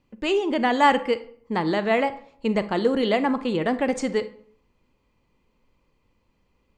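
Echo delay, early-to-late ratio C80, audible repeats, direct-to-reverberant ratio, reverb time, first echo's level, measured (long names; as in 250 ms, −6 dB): no echo audible, 19.0 dB, no echo audible, 12.0 dB, 0.60 s, no echo audible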